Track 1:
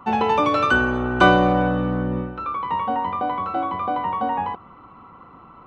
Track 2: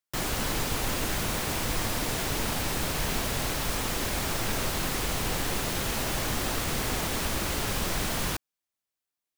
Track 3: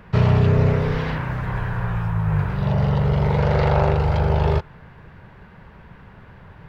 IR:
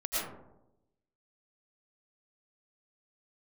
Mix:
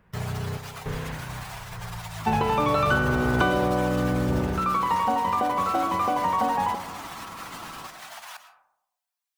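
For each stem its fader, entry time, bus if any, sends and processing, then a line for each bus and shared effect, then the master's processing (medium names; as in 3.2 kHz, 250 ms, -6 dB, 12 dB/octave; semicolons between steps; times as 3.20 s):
+2.0 dB, 2.20 s, send -14 dB, compression, threshold -24 dBFS, peak gain reduction 14 dB
0.0 dB, 0.00 s, send -14 dB, spectral contrast enhancement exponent 1.8; steep high-pass 700 Hz 48 dB/octave; peak limiter -31.5 dBFS, peak gain reduction 6.5 dB
-8.5 dB, 0.00 s, no send, random-step tremolo, depth 95%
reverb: on, RT60 0.90 s, pre-delay 70 ms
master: none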